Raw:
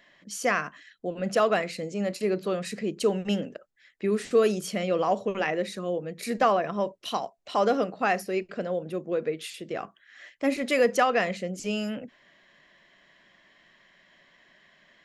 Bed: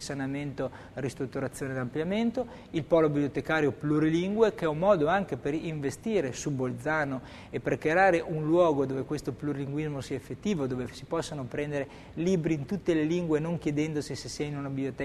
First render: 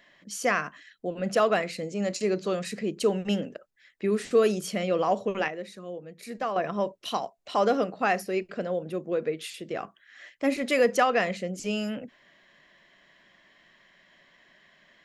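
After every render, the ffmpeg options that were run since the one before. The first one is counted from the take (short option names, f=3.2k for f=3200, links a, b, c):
-filter_complex "[0:a]asettb=1/sr,asplit=3[a][b][c];[a]atrim=end=2.024[d];[b]atrim=start=2.02:end=2.64,asetpts=PTS-STARTPTS,afade=t=in:d=0.004:c=qsin,afade=t=out:st=0.616:d=0.004:c=qsin,lowpass=f=6.8k:t=q:w=3.1[e];[c]atrim=start=2.636[f];[d][e]acrossfade=d=0.004:c1=hsin:c2=qsin[g];[g][f]acrossfade=d=0.004:c1=qsin:c2=hsin,asplit=3[h][i][j];[h]atrim=end=5.482[k];[i]atrim=start=5.478:end=6.562,asetpts=PTS-STARTPTS,volume=-8.5dB[l];[j]atrim=start=6.558[m];[k][l]acrossfade=d=0.004:c1=hsin:c2=hsin[n];[n][m]acrossfade=d=0.004:c1=hsin:c2=hsin"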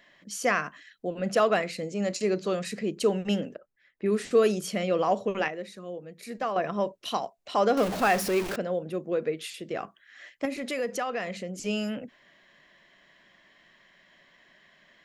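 -filter_complex "[0:a]asettb=1/sr,asplit=3[a][b][c];[a]atrim=end=3.554[d];[b]atrim=start=3.55:end=4.06,asetpts=PTS-STARTPTS,afade=t=in:d=0.004:c=qsin,afade=t=out:st=0.506:d=0.004:c=qsin,lowpass=f=1.2k:p=1[e];[c]atrim=start=4.056[f];[d][e]acrossfade=d=0.004:c1=hsin:c2=qsin[g];[g][f]acrossfade=d=0.004:c1=qsin:c2=hsin,asettb=1/sr,asplit=3[h][i][j];[h]atrim=end=7.774[k];[i]atrim=start=7.77:end=8.56,asetpts=PTS-STARTPTS,afade=t=in:d=0.004:c=qsin,afade=t=out:st=0.786:d=0.004:c=qsin,aeval=exprs='val(0)+0.5*0.0398*sgn(val(0))':c=same[l];[j]atrim=start=8.556[m];[k][l]acrossfade=d=0.004:c1=hsin:c2=qsin[n];[n][m]acrossfade=d=0.004:c1=qsin:c2=hsin,asettb=1/sr,asplit=3[o][p][q];[o]atrim=end=10.454[r];[p]atrim=start=10.45:end=11.64,asetpts=PTS-STARTPTS,afade=t=in:d=0.004:c=qsin,afade=t=out:st=1.186:d=0.004:c=qsin,acompressor=threshold=-33dB:ratio=2:attack=3.2:release=140:knee=1:detection=peak[s];[q]atrim=start=11.636[t];[r][s]acrossfade=d=0.004:c1=hsin:c2=qsin[u];[u][t]acrossfade=d=0.004:c1=qsin:c2=hsin"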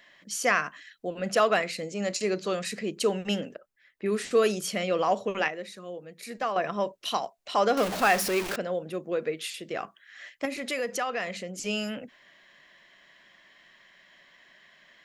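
-af "tiltshelf=f=680:g=-3.5"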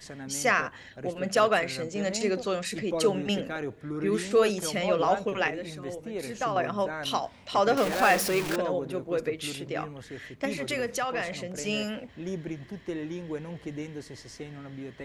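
-filter_complex "[1:a]volume=-8dB[a];[0:a][a]amix=inputs=2:normalize=0"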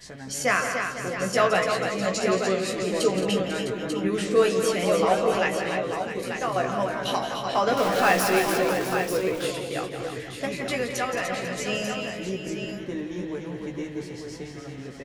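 -filter_complex "[0:a]asplit=2[a][b];[b]adelay=16,volume=-5dB[c];[a][c]amix=inputs=2:normalize=0,aecho=1:1:171|218|295|494|657|891:0.335|0.224|0.473|0.211|0.266|0.422"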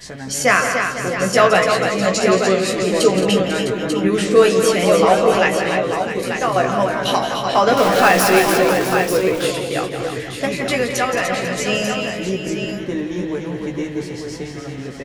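-af "volume=8.5dB,alimiter=limit=-1dB:level=0:latency=1"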